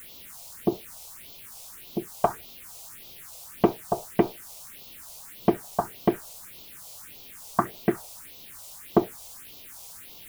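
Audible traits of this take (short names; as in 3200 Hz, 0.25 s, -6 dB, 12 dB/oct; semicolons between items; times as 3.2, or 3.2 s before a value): a quantiser's noise floor 8-bit, dither triangular; phasing stages 4, 1.7 Hz, lowest notch 270–1700 Hz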